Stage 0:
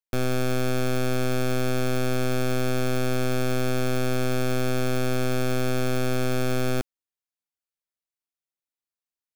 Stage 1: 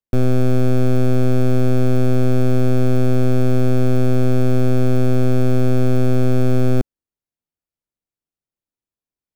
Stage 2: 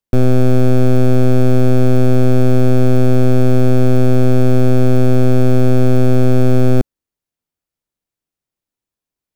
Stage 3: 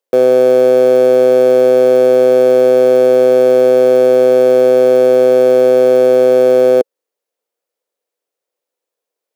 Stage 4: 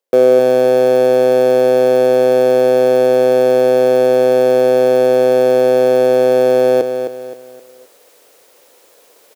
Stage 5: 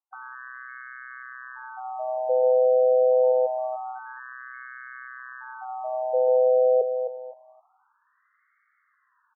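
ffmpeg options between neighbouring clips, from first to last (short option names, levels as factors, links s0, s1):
-af "tiltshelf=f=640:g=8.5,volume=1.5"
-af "acontrast=34"
-filter_complex "[0:a]highpass=f=490:t=q:w=4.9,asplit=2[s0][s1];[s1]asoftclip=type=hard:threshold=0.15,volume=0.316[s2];[s0][s2]amix=inputs=2:normalize=0,volume=1.12"
-af "areverse,acompressor=mode=upward:threshold=0.0708:ratio=2.5,areverse,aecho=1:1:261|522|783|1044:0.398|0.143|0.0516|0.0186"
-af "afftfilt=real='re*between(b*sr/1024,590*pow(1600/590,0.5+0.5*sin(2*PI*0.26*pts/sr))/1.41,590*pow(1600/590,0.5+0.5*sin(2*PI*0.26*pts/sr))*1.41)':imag='im*between(b*sr/1024,590*pow(1600/590,0.5+0.5*sin(2*PI*0.26*pts/sr))/1.41,590*pow(1600/590,0.5+0.5*sin(2*PI*0.26*pts/sr))*1.41)':win_size=1024:overlap=0.75,volume=0.447"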